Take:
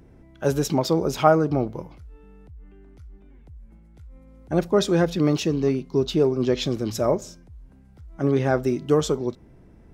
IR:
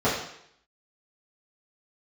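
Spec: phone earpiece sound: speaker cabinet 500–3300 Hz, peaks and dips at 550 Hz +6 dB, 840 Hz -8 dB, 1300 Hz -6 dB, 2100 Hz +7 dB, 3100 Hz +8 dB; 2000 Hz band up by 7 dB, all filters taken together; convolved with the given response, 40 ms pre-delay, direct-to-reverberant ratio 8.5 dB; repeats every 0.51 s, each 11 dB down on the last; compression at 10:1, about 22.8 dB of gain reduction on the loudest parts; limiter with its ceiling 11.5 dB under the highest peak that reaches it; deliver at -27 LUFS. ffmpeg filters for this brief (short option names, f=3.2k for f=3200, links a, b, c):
-filter_complex "[0:a]equalizer=f=2k:t=o:g=7.5,acompressor=threshold=-33dB:ratio=10,alimiter=level_in=6.5dB:limit=-24dB:level=0:latency=1,volume=-6.5dB,aecho=1:1:510|1020|1530:0.282|0.0789|0.0221,asplit=2[a][b];[1:a]atrim=start_sample=2205,adelay=40[c];[b][c]afir=irnorm=-1:irlink=0,volume=-25dB[d];[a][d]amix=inputs=2:normalize=0,highpass=500,equalizer=f=550:t=q:w=4:g=6,equalizer=f=840:t=q:w=4:g=-8,equalizer=f=1.3k:t=q:w=4:g=-6,equalizer=f=2.1k:t=q:w=4:g=7,equalizer=f=3.1k:t=q:w=4:g=8,lowpass=f=3.3k:w=0.5412,lowpass=f=3.3k:w=1.3066,volume=17dB"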